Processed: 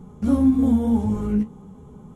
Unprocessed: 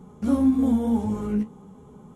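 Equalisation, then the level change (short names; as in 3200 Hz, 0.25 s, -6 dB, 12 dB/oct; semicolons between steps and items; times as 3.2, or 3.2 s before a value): low shelf 140 Hz +10.5 dB; 0.0 dB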